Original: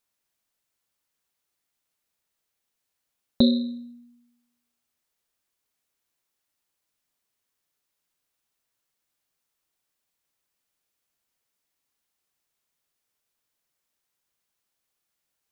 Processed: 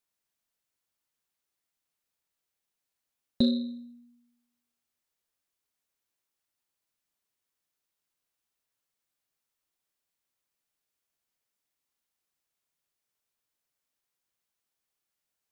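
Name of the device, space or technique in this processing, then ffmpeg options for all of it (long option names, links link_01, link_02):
one-band saturation: -filter_complex "[0:a]acrossover=split=540|2800[link_01][link_02][link_03];[link_02]asoftclip=type=tanh:threshold=-35.5dB[link_04];[link_01][link_04][link_03]amix=inputs=3:normalize=0,volume=-5dB"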